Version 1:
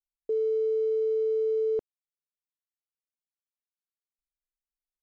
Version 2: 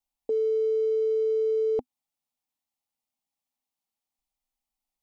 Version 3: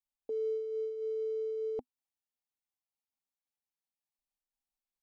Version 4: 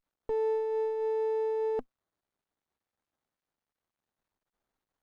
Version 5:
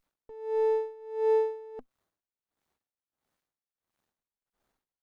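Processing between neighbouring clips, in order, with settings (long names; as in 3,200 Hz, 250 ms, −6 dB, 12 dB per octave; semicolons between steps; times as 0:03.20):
thirty-one-band graphic EQ 250 Hz +9 dB, 400 Hz −9 dB, 800 Hz +11 dB, 1,600 Hz −11 dB; level +6 dB
amplitude modulation by smooth noise, depth 60%; level −7.5 dB
in parallel at +2.5 dB: brickwall limiter −40.5 dBFS, peak gain reduction 11.5 dB; on the sum: windowed peak hold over 17 samples; level +2.5 dB
tremolo with a sine in dB 1.5 Hz, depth 23 dB; level +7.5 dB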